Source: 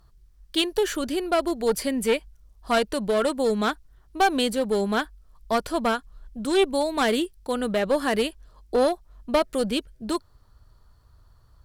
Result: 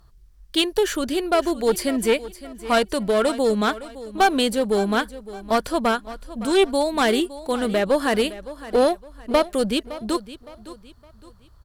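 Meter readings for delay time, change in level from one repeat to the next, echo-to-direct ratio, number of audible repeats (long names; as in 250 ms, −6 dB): 563 ms, −9.0 dB, −15.5 dB, 3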